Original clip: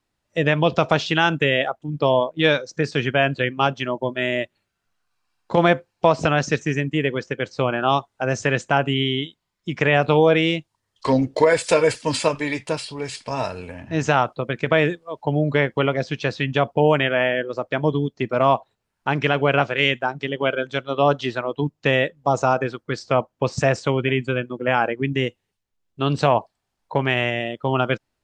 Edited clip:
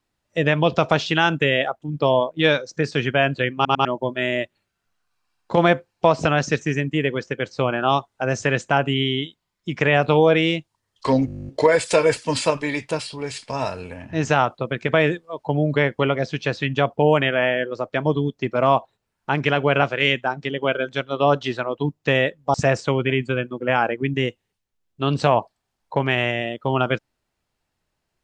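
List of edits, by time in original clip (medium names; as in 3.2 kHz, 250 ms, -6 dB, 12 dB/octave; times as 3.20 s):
3.55 s: stutter in place 0.10 s, 3 plays
11.26 s: stutter 0.02 s, 12 plays
22.32–23.53 s: delete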